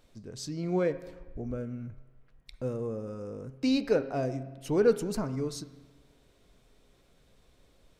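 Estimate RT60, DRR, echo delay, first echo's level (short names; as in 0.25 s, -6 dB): 1.3 s, 10.5 dB, none, none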